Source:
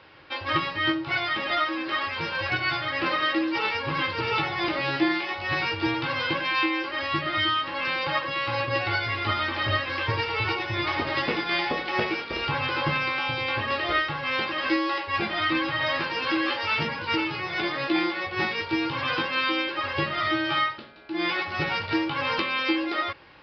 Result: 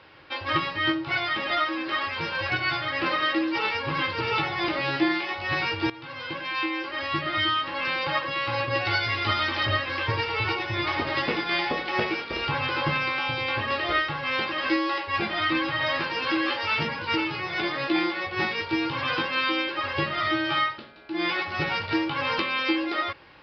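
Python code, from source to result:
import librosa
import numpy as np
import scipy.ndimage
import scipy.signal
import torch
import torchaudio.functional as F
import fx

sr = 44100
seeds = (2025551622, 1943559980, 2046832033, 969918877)

y = fx.high_shelf(x, sr, hz=5000.0, db=11.0, at=(8.85, 9.66))
y = fx.edit(y, sr, fx.fade_in_from(start_s=5.9, length_s=1.77, curve='qsin', floor_db=-17.0), tone=tone)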